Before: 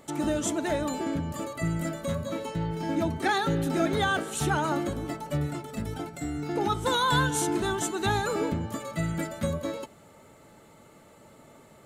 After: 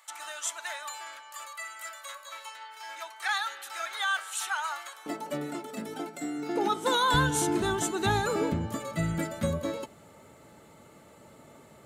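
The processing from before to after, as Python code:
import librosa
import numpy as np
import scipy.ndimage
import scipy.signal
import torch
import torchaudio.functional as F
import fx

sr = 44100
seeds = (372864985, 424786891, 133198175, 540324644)

y = fx.highpass(x, sr, hz=fx.steps((0.0, 1000.0), (5.06, 220.0), (7.14, 45.0)), slope=24)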